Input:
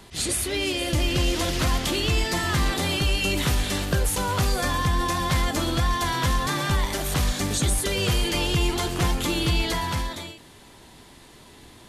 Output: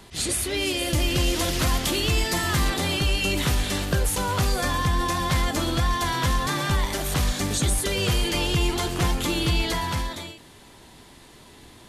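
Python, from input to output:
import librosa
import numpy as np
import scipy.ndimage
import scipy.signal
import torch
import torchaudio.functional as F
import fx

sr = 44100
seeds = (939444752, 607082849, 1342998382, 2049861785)

y = fx.high_shelf(x, sr, hz=9700.0, db=8.0, at=(0.57, 2.7))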